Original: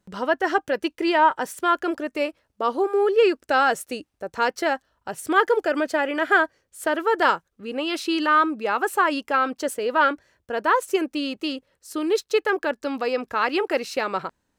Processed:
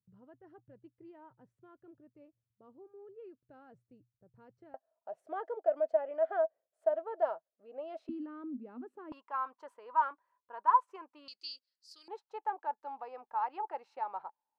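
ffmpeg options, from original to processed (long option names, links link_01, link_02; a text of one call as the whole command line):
ffmpeg -i in.wav -af "asetnsamples=nb_out_samples=441:pad=0,asendcmd='4.74 bandpass f 650;8.09 bandpass f 250;9.12 bandpass f 1000;11.28 bandpass f 4700;12.08 bandpass f 860',bandpass=frequency=120:width_type=q:width=13:csg=0" out.wav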